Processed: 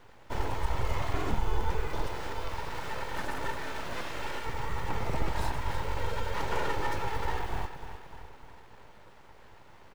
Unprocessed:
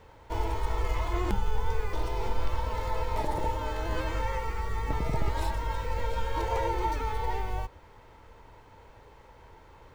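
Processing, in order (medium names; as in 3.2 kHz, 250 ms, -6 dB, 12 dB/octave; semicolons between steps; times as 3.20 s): 2.07–4.46 s: bass shelf 260 Hz -7.5 dB; feedback delay 301 ms, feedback 53%, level -10.5 dB; full-wave rectifier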